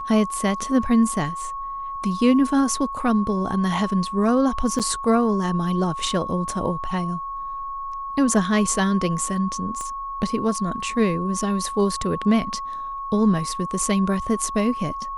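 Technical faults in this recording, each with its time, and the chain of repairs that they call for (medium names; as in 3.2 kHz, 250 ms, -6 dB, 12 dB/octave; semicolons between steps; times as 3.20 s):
whine 1.1 kHz -28 dBFS
4.79–4.80 s: dropout 7.3 ms
9.81 s: pop -20 dBFS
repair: de-click; band-stop 1.1 kHz, Q 30; interpolate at 4.79 s, 7.3 ms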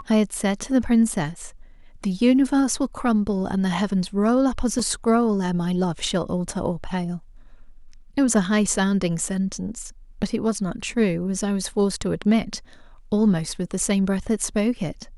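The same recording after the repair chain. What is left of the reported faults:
9.81 s: pop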